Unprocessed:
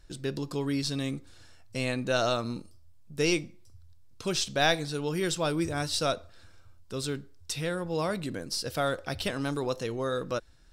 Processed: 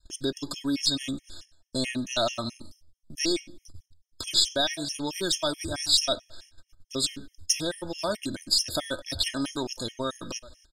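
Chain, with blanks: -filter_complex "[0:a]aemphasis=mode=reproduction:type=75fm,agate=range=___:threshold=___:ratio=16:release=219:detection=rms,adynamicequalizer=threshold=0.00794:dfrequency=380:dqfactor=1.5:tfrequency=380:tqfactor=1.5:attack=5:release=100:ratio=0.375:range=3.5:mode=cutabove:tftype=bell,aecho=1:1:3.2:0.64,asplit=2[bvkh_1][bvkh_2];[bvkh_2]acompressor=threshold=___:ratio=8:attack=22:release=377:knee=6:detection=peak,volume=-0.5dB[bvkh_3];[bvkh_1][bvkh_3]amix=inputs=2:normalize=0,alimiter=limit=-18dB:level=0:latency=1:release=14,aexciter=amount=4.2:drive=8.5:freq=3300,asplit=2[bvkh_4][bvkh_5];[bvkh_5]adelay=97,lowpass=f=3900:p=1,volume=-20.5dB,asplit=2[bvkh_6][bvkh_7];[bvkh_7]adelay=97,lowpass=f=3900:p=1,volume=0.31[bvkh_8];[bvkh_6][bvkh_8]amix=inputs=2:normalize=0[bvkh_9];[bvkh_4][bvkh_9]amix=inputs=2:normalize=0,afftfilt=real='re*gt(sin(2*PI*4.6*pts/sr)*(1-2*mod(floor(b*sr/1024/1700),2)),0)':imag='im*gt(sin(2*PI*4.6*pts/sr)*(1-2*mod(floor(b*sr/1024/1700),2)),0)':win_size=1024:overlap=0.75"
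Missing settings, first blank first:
-18dB, -47dB, -39dB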